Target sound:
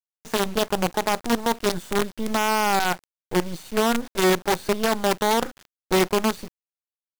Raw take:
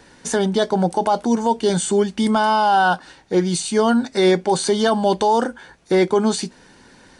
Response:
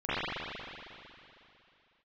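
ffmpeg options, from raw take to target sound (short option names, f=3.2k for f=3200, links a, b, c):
-af "aemphasis=mode=reproduction:type=75fm,acrusher=bits=3:dc=4:mix=0:aa=0.000001,volume=-6dB"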